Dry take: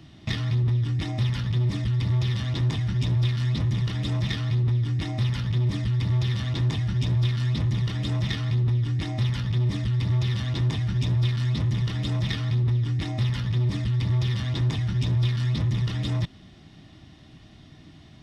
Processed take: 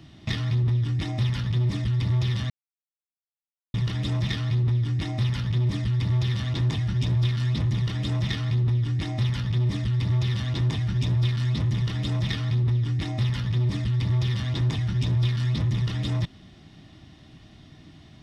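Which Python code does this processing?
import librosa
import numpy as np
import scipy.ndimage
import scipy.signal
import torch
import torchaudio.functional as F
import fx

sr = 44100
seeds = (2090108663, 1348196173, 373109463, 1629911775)

y = fx.edit(x, sr, fx.silence(start_s=2.5, length_s=1.24), tone=tone)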